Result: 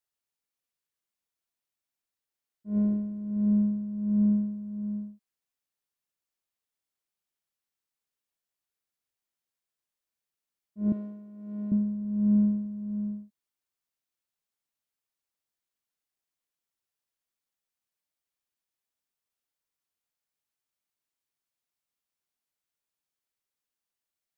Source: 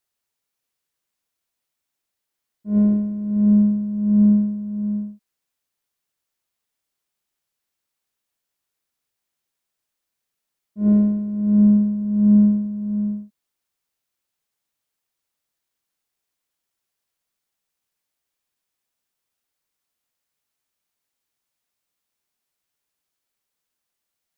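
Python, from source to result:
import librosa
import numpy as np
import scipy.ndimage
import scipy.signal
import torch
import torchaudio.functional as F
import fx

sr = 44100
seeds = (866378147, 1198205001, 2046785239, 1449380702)

y = fx.highpass(x, sr, hz=790.0, slope=6, at=(10.92, 11.72))
y = y * 10.0 ** (-9.0 / 20.0)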